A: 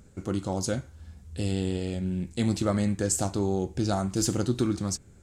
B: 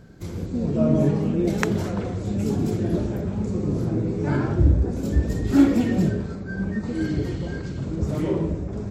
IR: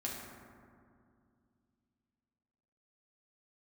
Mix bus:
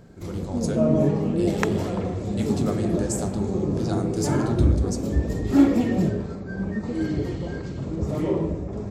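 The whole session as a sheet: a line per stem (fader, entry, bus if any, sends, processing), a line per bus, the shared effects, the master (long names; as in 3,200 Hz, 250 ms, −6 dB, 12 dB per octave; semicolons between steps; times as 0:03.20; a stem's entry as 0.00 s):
−10.5 dB, 0.00 s, send −6 dB, automatic gain control gain up to 4 dB
−2.5 dB, 0.00 s, no send, parametric band 680 Hz +4.5 dB 2.3 octaves; notch filter 1,500 Hz, Q 11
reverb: on, RT60 2.3 s, pre-delay 4 ms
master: no processing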